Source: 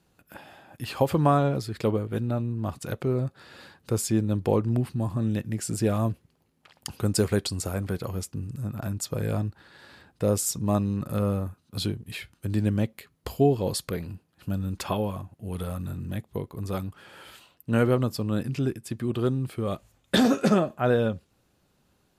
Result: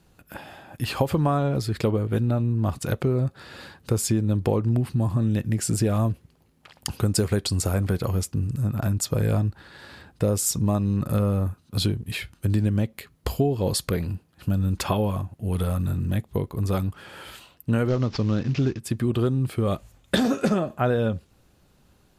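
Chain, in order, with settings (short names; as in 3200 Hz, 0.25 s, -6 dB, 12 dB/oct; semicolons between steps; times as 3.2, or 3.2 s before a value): 17.88–18.8 CVSD 32 kbps; low shelf 69 Hz +10.5 dB; compressor 6:1, threshold -24 dBFS, peak gain reduction 9.5 dB; gain +5.5 dB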